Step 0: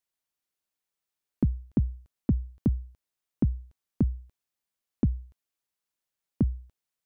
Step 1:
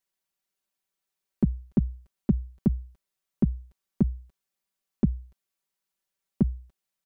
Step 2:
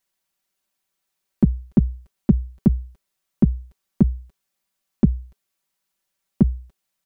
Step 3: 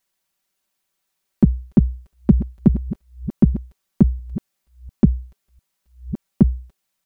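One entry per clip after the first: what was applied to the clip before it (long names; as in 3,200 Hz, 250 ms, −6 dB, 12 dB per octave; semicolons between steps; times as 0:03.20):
comb filter 5.2 ms, depth 74%
notch filter 420 Hz, Q 12; level +7 dB
delay that plays each chunk backwards 699 ms, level −14 dB; level +2.5 dB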